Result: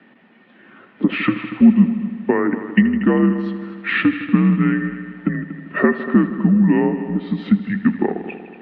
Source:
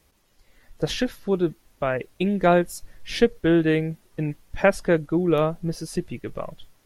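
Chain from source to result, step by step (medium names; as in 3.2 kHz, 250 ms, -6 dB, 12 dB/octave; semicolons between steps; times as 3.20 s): in parallel at +1 dB: peak limiter -13.5 dBFS, peak gain reduction 9 dB; on the sum: compression, threshold -24 dBFS, peak gain reduction 15 dB; wide varispeed 0.795×; small resonant body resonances 300/1900 Hz, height 15 dB, ringing for 50 ms; on a send: multi-head delay 79 ms, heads all three, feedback 52%, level -16 dB; on the sum: mistuned SSB -82 Hz 300–3000 Hz; trim +7 dB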